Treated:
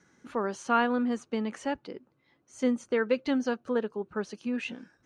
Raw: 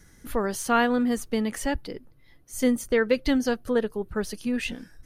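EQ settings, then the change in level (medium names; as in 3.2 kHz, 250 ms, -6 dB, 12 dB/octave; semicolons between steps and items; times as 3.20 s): cabinet simulation 250–6800 Hz, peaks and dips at 300 Hz -3 dB, 460 Hz -4 dB, 680 Hz -4 dB, 1.9 kHz -7 dB, 3.4 kHz -5 dB, 4.9 kHz -7 dB; treble shelf 4.3 kHz -8.5 dB; 0.0 dB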